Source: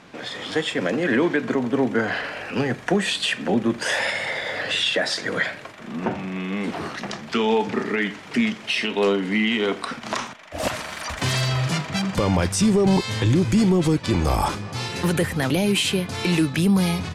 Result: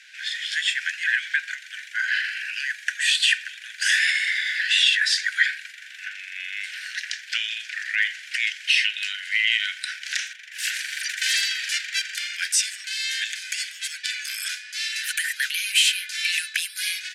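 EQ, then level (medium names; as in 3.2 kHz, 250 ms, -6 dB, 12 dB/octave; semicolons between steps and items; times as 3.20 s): Chebyshev high-pass 1.5 kHz, order 8; +5.0 dB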